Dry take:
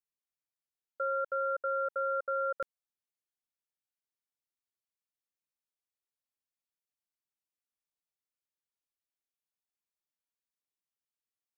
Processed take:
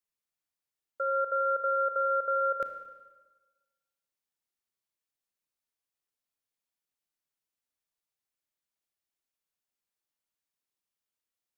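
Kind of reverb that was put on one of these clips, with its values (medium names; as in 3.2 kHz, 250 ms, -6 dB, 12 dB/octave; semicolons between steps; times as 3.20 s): Schroeder reverb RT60 1.3 s, combs from 25 ms, DRR 7.5 dB; trim +2 dB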